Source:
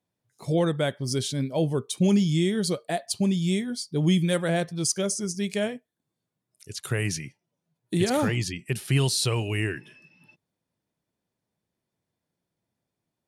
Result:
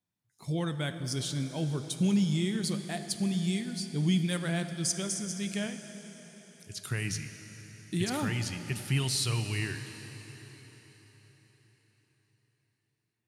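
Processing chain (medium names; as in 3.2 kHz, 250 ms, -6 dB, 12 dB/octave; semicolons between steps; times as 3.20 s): peaking EQ 520 Hz -10 dB 1.1 oct; plate-style reverb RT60 4.7 s, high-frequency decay 0.95×, DRR 8 dB; trim -4.5 dB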